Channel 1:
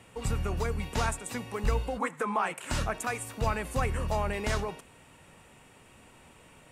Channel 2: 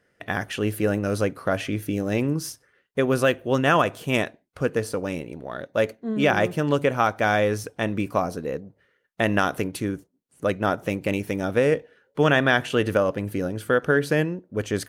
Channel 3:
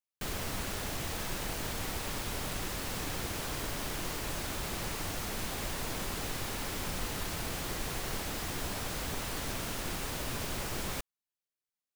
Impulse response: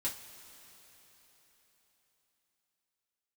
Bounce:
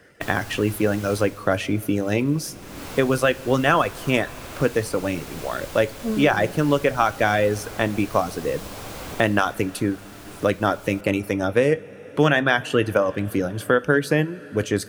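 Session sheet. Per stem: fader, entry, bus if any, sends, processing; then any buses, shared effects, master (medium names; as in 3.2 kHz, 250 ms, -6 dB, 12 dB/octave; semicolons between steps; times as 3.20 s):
mute
+1.5 dB, 0.00 s, send -12 dB, reverb removal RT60 0.83 s
1.20 s -5.5 dB -> 1.45 s -17 dB -> 2.43 s -17 dB -> 2.83 s -5.5 dB -> 9.16 s -5.5 dB -> 9.71 s -13.5 dB, 0.00 s, send -13 dB, band-stop 1.8 kHz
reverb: on, pre-delay 3 ms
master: three bands compressed up and down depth 40%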